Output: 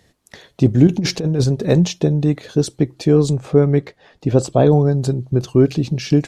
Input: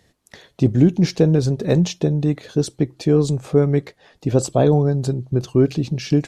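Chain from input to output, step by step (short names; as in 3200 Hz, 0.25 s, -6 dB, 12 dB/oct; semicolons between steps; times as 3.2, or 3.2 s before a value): 0.87–1.44 negative-ratio compressor -18 dBFS, ratio -0.5; 3.33–4.71 high shelf 7200 Hz -10.5 dB; gain +2.5 dB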